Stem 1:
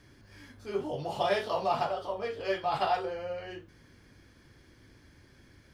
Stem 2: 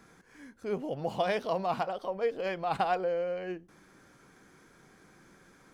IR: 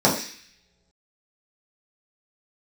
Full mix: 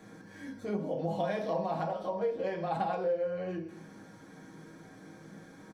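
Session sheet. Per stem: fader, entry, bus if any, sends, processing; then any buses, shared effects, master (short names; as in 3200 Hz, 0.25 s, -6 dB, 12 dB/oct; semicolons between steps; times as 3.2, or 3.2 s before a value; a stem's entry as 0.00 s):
-6.0 dB, 0.00 s, send -18 dB, HPF 95 Hz; compressor, threshold -32 dBFS, peak gain reduction 9.5 dB
-3.5 dB, 0.00 s, polarity flipped, send -15.5 dB, dry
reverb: on, pre-delay 3 ms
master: comb 6.3 ms, depth 40%; compressor 2:1, threshold -36 dBFS, peak gain reduction 10.5 dB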